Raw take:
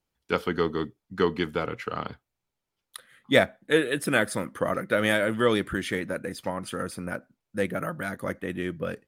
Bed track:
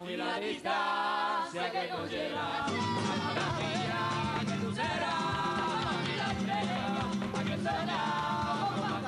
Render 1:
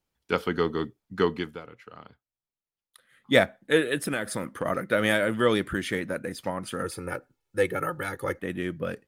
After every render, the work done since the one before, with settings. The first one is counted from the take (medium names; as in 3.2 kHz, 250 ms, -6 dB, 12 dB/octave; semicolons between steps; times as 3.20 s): 1.25–3.32 s: dip -14.5 dB, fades 0.37 s; 3.96–4.66 s: compression, threshold -24 dBFS; 6.84–8.39 s: comb 2.3 ms, depth 80%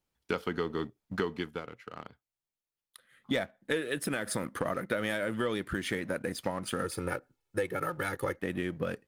waveshaping leveller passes 1; compression 6:1, threshold -29 dBFS, peak gain reduction 16.5 dB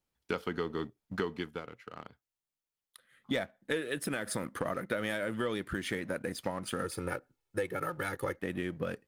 trim -2 dB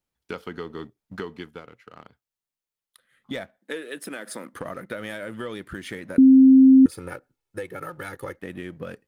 3.58–4.54 s: high-pass 210 Hz 24 dB/octave; 6.18–6.86 s: bleep 264 Hz -8.5 dBFS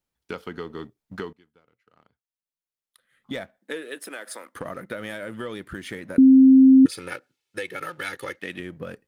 1.33–3.33 s: fade in quadratic, from -22 dB; 3.94–4.54 s: high-pass 310 Hz -> 650 Hz; 6.85–8.60 s: frequency weighting D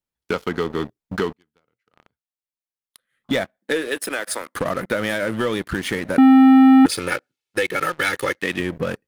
waveshaping leveller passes 3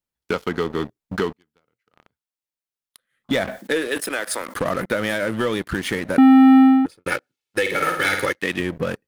3.32–4.86 s: decay stretcher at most 83 dB/s; 6.54–7.06 s: studio fade out; 7.61–8.26 s: flutter echo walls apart 8.9 m, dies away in 0.62 s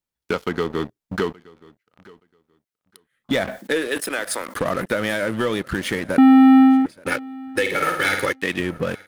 feedback delay 873 ms, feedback 17%, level -23.5 dB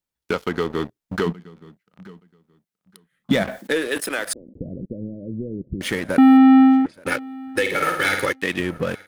1.26–3.43 s: peaking EQ 180 Hz +14 dB 0.57 oct; 4.33–5.81 s: Gaussian low-pass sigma 25 samples; 6.37–6.94 s: distance through air 73 m